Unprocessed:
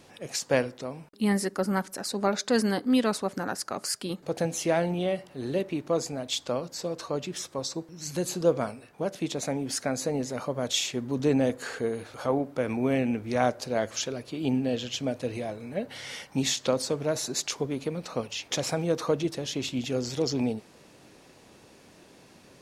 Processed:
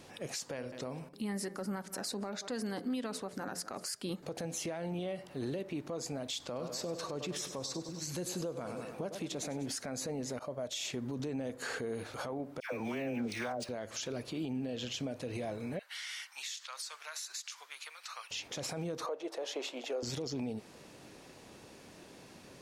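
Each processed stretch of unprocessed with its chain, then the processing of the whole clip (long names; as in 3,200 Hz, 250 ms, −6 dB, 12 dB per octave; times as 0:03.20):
0:00.54–0:03.86: hum removal 87.95 Hz, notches 8 + single-tap delay 180 ms −22 dB
0:06.40–0:09.68: upward compression, threshold −44 dBFS + repeating echo 99 ms, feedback 59%, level −13 dB
0:10.39–0:10.90: downward expander −33 dBFS + parametric band 620 Hz +10 dB 0.24 octaves
0:12.60–0:13.69: spectral tilt +2 dB per octave + all-pass dispersion lows, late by 124 ms, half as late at 1,100 Hz + linearly interpolated sample-rate reduction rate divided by 3×
0:15.79–0:18.31: high-pass filter 1,200 Hz 24 dB per octave + downward compressor 8 to 1, threshold −38 dBFS
0:19.06–0:20.03: high-pass filter 530 Hz 24 dB per octave + tilt shelving filter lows +9.5 dB, about 1,300 Hz
whole clip: downward compressor 5 to 1, threshold −31 dBFS; brickwall limiter −29 dBFS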